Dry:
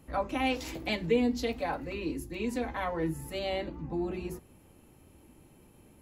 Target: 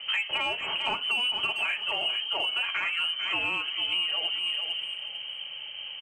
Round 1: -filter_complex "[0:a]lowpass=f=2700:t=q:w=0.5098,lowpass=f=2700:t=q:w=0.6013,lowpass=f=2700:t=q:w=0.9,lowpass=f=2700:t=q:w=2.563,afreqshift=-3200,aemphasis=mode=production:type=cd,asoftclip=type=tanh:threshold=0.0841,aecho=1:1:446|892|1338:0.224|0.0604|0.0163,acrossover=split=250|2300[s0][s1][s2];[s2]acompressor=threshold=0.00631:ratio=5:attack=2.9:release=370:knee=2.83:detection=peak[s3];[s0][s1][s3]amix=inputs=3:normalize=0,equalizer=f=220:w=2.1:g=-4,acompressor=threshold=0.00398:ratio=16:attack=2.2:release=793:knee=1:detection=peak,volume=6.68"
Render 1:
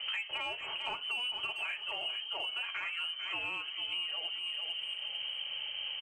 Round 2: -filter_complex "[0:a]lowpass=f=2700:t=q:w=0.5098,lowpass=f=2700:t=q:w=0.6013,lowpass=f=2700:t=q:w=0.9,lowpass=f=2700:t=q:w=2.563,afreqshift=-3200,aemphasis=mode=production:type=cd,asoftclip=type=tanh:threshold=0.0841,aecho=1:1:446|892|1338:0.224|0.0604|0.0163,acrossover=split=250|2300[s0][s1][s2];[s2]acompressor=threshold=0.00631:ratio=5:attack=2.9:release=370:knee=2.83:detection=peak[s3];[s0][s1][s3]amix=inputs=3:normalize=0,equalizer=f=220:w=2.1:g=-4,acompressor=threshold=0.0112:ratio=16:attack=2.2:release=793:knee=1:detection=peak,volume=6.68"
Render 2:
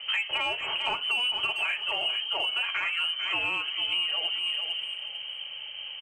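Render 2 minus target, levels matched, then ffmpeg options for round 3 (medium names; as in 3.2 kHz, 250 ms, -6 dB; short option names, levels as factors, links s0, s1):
250 Hz band -3.0 dB
-filter_complex "[0:a]lowpass=f=2700:t=q:w=0.5098,lowpass=f=2700:t=q:w=0.6013,lowpass=f=2700:t=q:w=0.9,lowpass=f=2700:t=q:w=2.563,afreqshift=-3200,aemphasis=mode=production:type=cd,asoftclip=type=tanh:threshold=0.0841,aecho=1:1:446|892|1338:0.224|0.0604|0.0163,acrossover=split=250|2300[s0][s1][s2];[s2]acompressor=threshold=0.00631:ratio=5:attack=2.9:release=370:knee=2.83:detection=peak[s3];[s0][s1][s3]amix=inputs=3:normalize=0,equalizer=f=220:w=2.1:g=4.5,acompressor=threshold=0.0112:ratio=16:attack=2.2:release=793:knee=1:detection=peak,volume=6.68"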